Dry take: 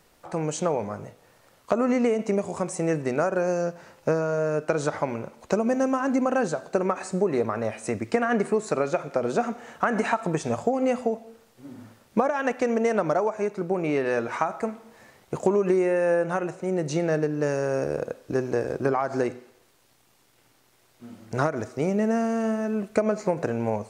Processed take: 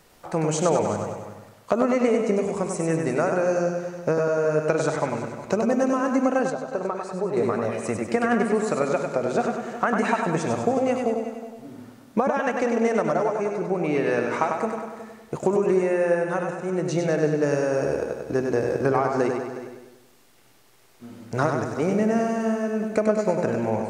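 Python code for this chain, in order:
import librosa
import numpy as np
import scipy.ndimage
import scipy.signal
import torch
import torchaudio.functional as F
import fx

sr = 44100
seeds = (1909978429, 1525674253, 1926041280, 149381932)

y = fx.echo_feedback(x, sr, ms=98, feedback_pct=54, wet_db=-5.0)
y = fx.rider(y, sr, range_db=5, speed_s=2.0)
y = fx.graphic_eq(y, sr, hz=(250, 2000, 8000), db=(-12, -8, -11), at=(6.5, 7.37))
y = y + 10.0 ** (-14.5 / 20.0) * np.pad(y, (int(364 * sr / 1000.0), 0))[:len(y)]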